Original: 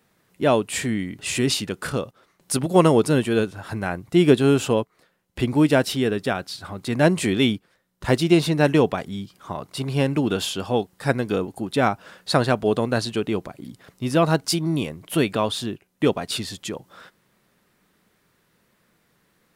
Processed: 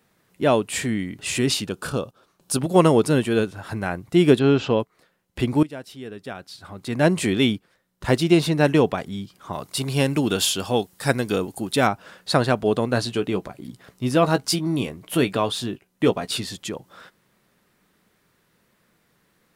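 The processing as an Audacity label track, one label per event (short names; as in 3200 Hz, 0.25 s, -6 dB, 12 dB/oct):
1.640000	2.590000	bell 2000 Hz -13.5 dB 0.26 oct
4.390000	4.800000	inverse Chebyshev low-pass stop band from 11000 Hz, stop band 50 dB
5.630000	7.130000	fade in quadratic, from -18 dB
9.530000	11.870000	high shelf 3800 Hz +10.5 dB
12.920000	16.560000	doubler 16 ms -10.5 dB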